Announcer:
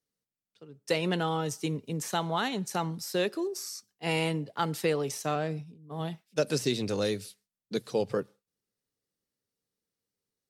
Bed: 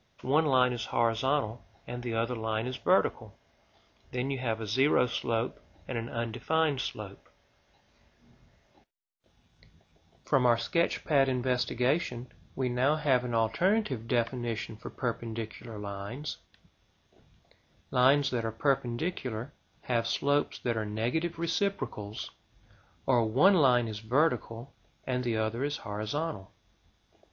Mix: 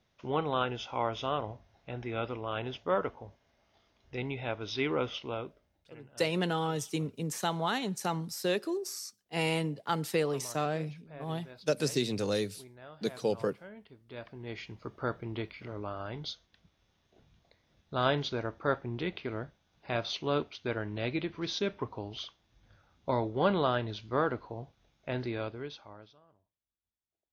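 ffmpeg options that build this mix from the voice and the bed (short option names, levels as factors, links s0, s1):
-filter_complex "[0:a]adelay=5300,volume=0.841[s0];[1:a]volume=5.01,afade=t=out:st=5.06:d=0.8:silence=0.125893,afade=t=in:st=14.05:d=0.95:silence=0.112202,afade=t=out:st=25.12:d=1.03:silence=0.0354813[s1];[s0][s1]amix=inputs=2:normalize=0"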